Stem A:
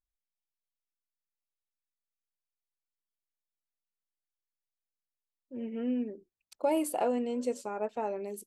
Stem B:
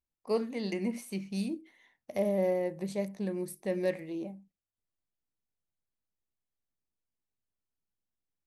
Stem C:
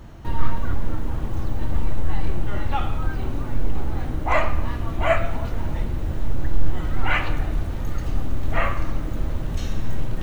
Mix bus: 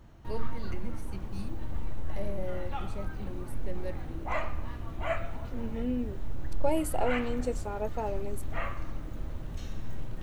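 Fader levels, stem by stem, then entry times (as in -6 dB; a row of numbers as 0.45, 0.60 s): -0.5, -9.5, -12.0 dB; 0.00, 0.00, 0.00 s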